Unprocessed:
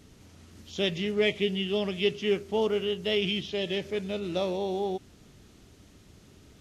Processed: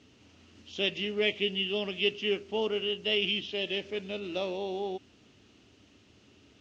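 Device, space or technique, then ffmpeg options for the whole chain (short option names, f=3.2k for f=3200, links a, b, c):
car door speaker: -af "highpass=100,equalizer=f=160:t=q:w=4:g=-10,equalizer=f=280:t=q:w=4:g=3,equalizer=f=2.8k:t=q:w=4:g=9,lowpass=f=6.5k:w=0.5412,lowpass=f=6.5k:w=1.3066,volume=-4dB"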